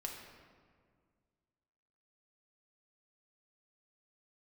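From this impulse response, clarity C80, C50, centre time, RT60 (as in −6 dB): 5.0 dB, 3.5 dB, 57 ms, 1.9 s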